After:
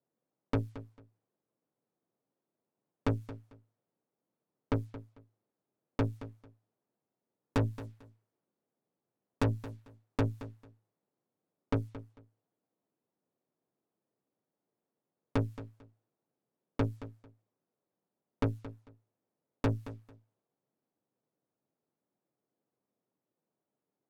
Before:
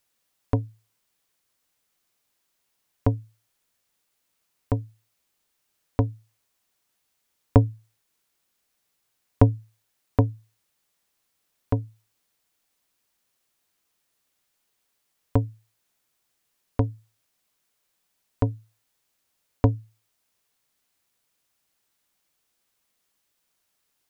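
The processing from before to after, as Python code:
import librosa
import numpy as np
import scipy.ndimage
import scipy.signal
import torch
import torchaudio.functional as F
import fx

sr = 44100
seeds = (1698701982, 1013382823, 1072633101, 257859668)

y = scipy.signal.sosfilt(scipy.signal.butter(4, 120.0, 'highpass', fs=sr, output='sos'), x)
y = fx.env_lowpass(y, sr, base_hz=460.0, full_db=-27.0)
y = fx.low_shelf(y, sr, hz=160.0, db=-5.0)
y = fx.tube_stage(y, sr, drive_db=33.0, bias=0.7)
y = fx.echo_feedback(y, sr, ms=223, feedback_pct=21, wet_db=-14.5)
y = F.gain(torch.from_numpy(y), 8.0).numpy()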